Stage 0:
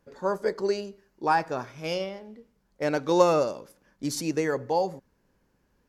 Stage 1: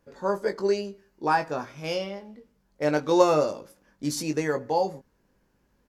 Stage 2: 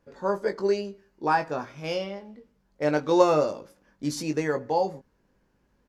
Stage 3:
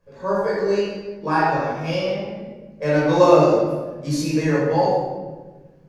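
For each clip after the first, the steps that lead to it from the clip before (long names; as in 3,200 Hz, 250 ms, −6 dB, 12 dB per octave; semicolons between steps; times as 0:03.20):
double-tracking delay 20 ms −6.5 dB
high-shelf EQ 8,000 Hz −9 dB
rectangular room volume 910 cubic metres, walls mixed, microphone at 5.4 metres; level −4 dB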